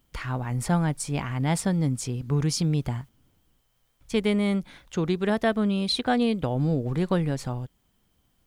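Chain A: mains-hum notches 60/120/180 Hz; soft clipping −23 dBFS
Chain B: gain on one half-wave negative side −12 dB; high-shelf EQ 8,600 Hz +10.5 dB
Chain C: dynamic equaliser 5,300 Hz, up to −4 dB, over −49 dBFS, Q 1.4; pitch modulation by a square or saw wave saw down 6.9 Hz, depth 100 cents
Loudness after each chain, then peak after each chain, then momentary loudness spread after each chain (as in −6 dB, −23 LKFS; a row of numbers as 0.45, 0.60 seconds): −30.0, −30.5, −26.5 LKFS; −23.0, −12.5, −10.5 dBFS; 7, 9, 8 LU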